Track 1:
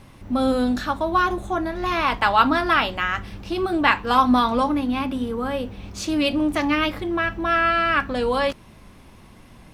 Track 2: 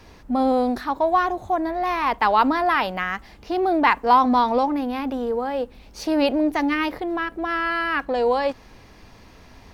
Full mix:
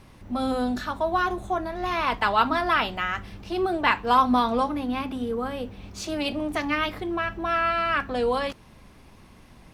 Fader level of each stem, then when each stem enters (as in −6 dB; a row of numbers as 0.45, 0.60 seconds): −4.5, −11.0 decibels; 0.00, 0.00 seconds